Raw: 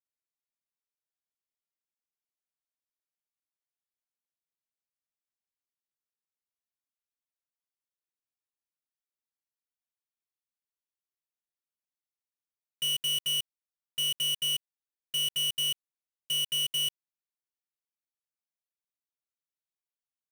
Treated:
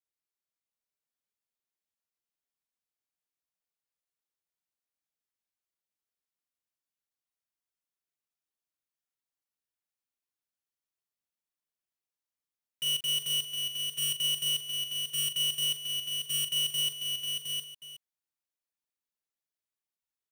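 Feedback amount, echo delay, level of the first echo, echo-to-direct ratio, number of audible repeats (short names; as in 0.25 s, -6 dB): no steady repeat, 40 ms, -9.0 dB, -2.0 dB, 5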